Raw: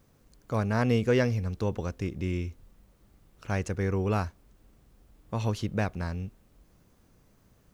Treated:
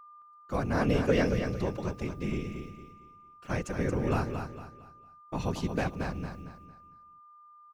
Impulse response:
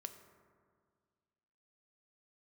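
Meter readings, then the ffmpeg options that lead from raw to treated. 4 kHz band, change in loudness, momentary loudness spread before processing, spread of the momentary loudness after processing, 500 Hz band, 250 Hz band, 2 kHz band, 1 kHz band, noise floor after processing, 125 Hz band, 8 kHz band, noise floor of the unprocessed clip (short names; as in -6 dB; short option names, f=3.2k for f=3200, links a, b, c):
-0.5 dB, -2.0 dB, 12 LU, 20 LU, -1.0 dB, -0.5 dB, -0.5 dB, 0.0 dB, -55 dBFS, -3.5 dB, -1.0 dB, -63 dBFS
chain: -af "agate=range=-31dB:threshold=-52dB:ratio=16:detection=peak,highpass=92,afftfilt=real='hypot(re,im)*cos(2*PI*random(0))':imag='hypot(re,im)*sin(2*PI*random(1))':win_size=512:overlap=0.75,aeval=exprs='val(0)+0.002*sin(2*PI*1200*n/s)':c=same,aecho=1:1:227|454|681|908:0.447|0.152|0.0516|0.0176,volume=4.5dB"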